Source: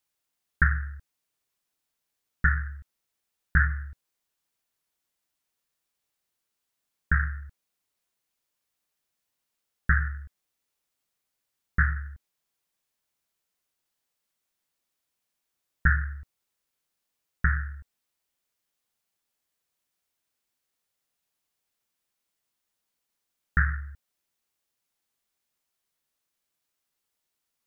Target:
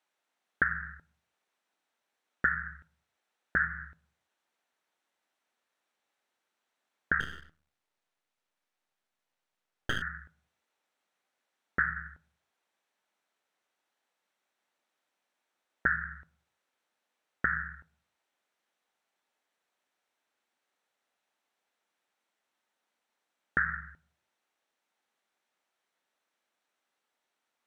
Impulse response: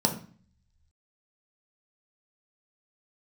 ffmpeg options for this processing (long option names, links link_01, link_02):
-filter_complex "[0:a]asplit=2[link_01][link_02];[1:a]atrim=start_sample=2205,afade=type=out:start_time=0.39:duration=0.01,atrim=end_sample=17640[link_03];[link_02][link_03]afir=irnorm=-1:irlink=0,volume=-22.5dB[link_04];[link_01][link_04]amix=inputs=2:normalize=0,acompressor=threshold=-27dB:ratio=5,bandpass=frequency=1100:width_type=q:width=0.58:csg=0,asettb=1/sr,asplit=3[link_05][link_06][link_07];[link_05]atrim=end=7.204[link_08];[link_06]atrim=start=7.2:end=10.02,asetpts=PTS-STARTPTS,afade=type=in:duration=0.004:curve=qsin,afade=type=out:start_time=2.816:duration=0.004:curve=qsin,aeval=exprs='max(val(0),0)':channel_layout=same[link_09];[link_07]atrim=start=10.016[link_10];[link_08][link_09]acrossfade=duration=0.004:curve1=hsin:curve2=qsin[link_11];[link_11][link_10]acrossfade=duration=0.004:curve1=qsin:curve2=hsin,volume=6.5dB"